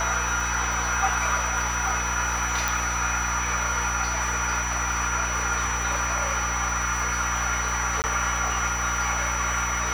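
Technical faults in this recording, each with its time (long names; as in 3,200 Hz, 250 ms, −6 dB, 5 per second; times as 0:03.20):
surface crackle 140 per second −31 dBFS
mains hum 60 Hz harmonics 6 −32 dBFS
whistle 5,900 Hz −30 dBFS
0:02.68: click
0:08.02–0:08.04: drop-out 19 ms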